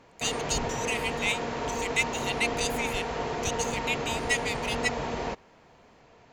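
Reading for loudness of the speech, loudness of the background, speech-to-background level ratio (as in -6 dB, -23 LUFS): -31.0 LUFS, -32.0 LUFS, 1.0 dB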